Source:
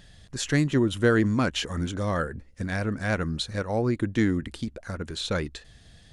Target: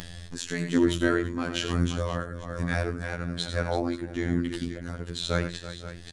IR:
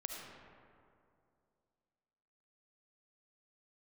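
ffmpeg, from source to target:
-filter_complex "[0:a]asplit=2[link_01][link_02];[link_02]aecho=0:1:83|102|333|529:0.251|0.2|0.188|0.188[link_03];[link_01][link_03]amix=inputs=2:normalize=0,tremolo=f=1.1:d=0.63,acompressor=mode=upward:threshold=-30dB:ratio=2.5,asplit=2[link_04][link_05];[link_05]adelay=495.6,volume=-23dB,highshelf=frequency=4000:gain=-11.2[link_06];[link_04][link_06]amix=inputs=2:normalize=0,afftfilt=real='hypot(re,im)*cos(PI*b)':imag='0':win_size=2048:overlap=0.75,volume=4dB"

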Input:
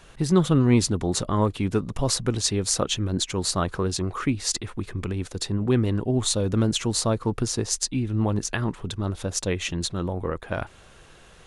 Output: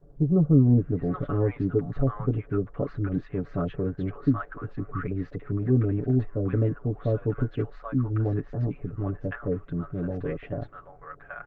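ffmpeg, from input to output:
ffmpeg -i in.wav -filter_complex "[0:a]lowpass=frequency=1600:width=0.5412,lowpass=frequency=1600:width=1.3066,equalizer=frequency=930:width_type=o:width=0.31:gain=-15,aecho=1:1:7:0.84,acrossover=split=820[link_01][link_02];[link_02]adelay=780[link_03];[link_01][link_03]amix=inputs=2:normalize=0,volume=-2.5dB" -ar 48000 -c:a libopus -b:a 24k out.opus

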